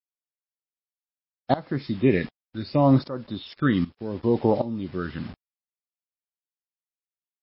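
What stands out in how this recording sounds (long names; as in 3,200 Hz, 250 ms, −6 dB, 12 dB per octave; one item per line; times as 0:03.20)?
phaser sweep stages 12, 0.72 Hz, lowest notch 720–2,800 Hz
a quantiser's noise floor 8 bits, dither none
tremolo saw up 1.3 Hz, depth 90%
MP3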